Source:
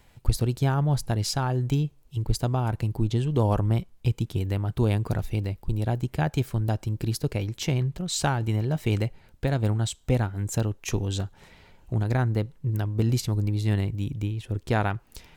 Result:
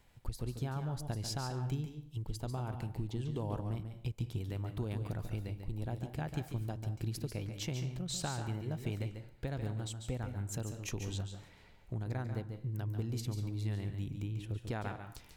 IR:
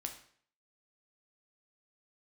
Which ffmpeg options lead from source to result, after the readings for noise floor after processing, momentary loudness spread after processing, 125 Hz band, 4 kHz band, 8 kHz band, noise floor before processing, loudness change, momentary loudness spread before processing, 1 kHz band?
-58 dBFS, 4 LU, -12.5 dB, -10.5 dB, -10.0 dB, -57 dBFS, -12.5 dB, 5 LU, -13.5 dB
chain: -filter_complex "[0:a]acompressor=threshold=-27dB:ratio=3,asplit=2[a][b];[1:a]atrim=start_sample=2205,adelay=142[c];[b][c]afir=irnorm=-1:irlink=0,volume=-5dB[d];[a][d]amix=inputs=2:normalize=0,volume=-8.5dB"

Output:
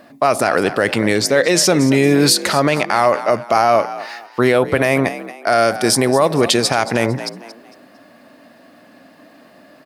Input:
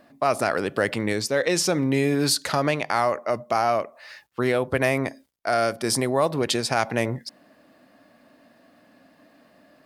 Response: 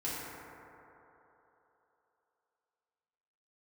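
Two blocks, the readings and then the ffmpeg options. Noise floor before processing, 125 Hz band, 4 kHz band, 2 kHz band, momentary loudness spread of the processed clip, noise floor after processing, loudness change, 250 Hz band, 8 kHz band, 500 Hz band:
-58 dBFS, +7.0 dB, +9.0 dB, +8.0 dB, 8 LU, -47 dBFS, +8.5 dB, +9.0 dB, +9.0 dB, +8.5 dB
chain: -filter_complex "[0:a]lowshelf=f=72:g=-9,asplit=4[a][b][c][d];[b]adelay=227,afreqshift=58,volume=-15.5dB[e];[c]adelay=454,afreqshift=116,volume=-24.9dB[f];[d]adelay=681,afreqshift=174,volume=-34.2dB[g];[a][e][f][g]amix=inputs=4:normalize=0,alimiter=level_in=11.5dB:limit=-1dB:release=50:level=0:latency=1,volume=-1.5dB"

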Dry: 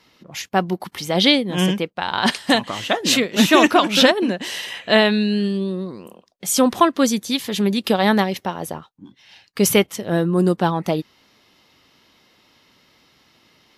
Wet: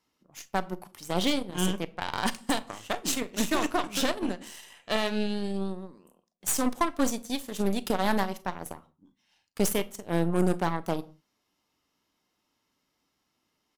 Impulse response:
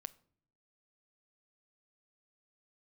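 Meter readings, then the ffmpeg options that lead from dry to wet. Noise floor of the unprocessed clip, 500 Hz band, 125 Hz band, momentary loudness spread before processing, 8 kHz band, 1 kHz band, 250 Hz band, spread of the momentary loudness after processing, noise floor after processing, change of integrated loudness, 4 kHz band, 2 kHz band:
-59 dBFS, -11.5 dB, -9.5 dB, 13 LU, -7.5 dB, -10.0 dB, -11.0 dB, 13 LU, -78 dBFS, -11.0 dB, -14.0 dB, -13.0 dB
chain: -filter_complex "[0:a]equalizer=f=125:t=o:w=1:g=-7,equalizer=f=500:t=o:w=1:g=-5,equalizer=f=2k:t=o:w=1:g=-6,equalizer=f=4k:t=o:w=1:g=-8,equalizer=f=8k:t=o:w=1:g=5,aecho=1:1:36|47:0.188|0.133,alimiter=limit=-11.5dB:level=0:latency=1:release=256,aeval=exprs='0.266*(cos(1*acos(clip(val(0)/0.266,-1,1)))-cos(1*PI/2))+0.0944*(cos(2*acos(clip(val(0)/0.266,-1,1)))-cos(2*PI/2))+0.0266*(cos(7*acos(clip(val(0)/0.266,-1,1)))-cos(7*PI/2))':c=same[a];[1:a]atrim=start_sample=2205,afade=t=out:st=0.25:d=0.01,atrim=end_sample=11466[b];[a][b]afir=irnorm=-1:irlink=0,volume=-1dB"

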